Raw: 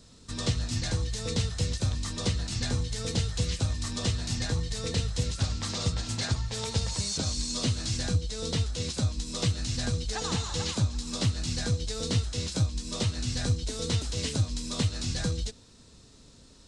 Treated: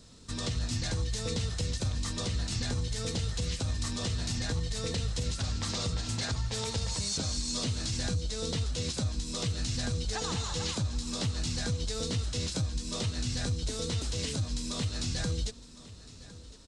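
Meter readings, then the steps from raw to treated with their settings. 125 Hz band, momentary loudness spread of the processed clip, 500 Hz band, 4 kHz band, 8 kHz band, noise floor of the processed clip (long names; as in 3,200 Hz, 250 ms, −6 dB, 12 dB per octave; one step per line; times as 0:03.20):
−3.5 dB, 2 LU, −2.0 dB, −2.0 dB, −1.5 dB, −50 dBFS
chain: brickwall limiter −23 dBFS, peak gain reduction 8.5 dB
on a send: single-tap delay 1,059 ms −18 dB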